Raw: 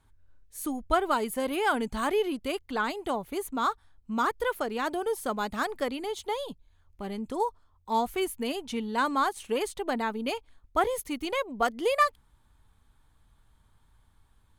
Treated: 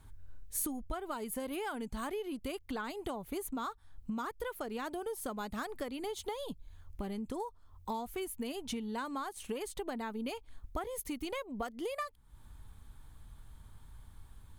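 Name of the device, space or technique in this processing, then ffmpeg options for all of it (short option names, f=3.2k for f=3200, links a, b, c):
ASMR close-microphone chain: -af "lowshelf=f=230:g=7,acompressor=threshold=-40dB:ratio=10,highshelf=f=8.8k:g=7.5,volume=4dB"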